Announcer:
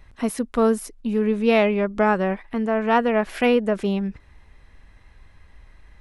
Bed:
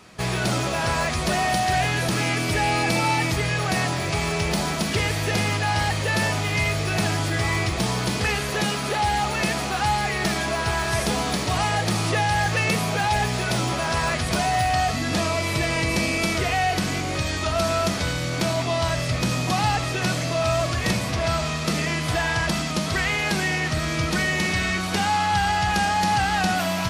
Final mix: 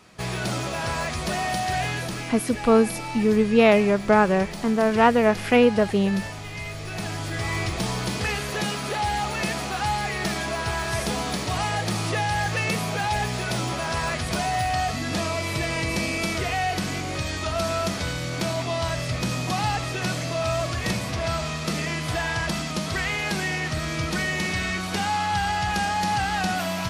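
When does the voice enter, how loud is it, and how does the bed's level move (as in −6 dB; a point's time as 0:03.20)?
2.10 s, +1.5 dB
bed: 0:01.91 −4 dB
0:02.36 −11.5 dB
0:06.60 −11.5 dB
0:07.62 −3 dB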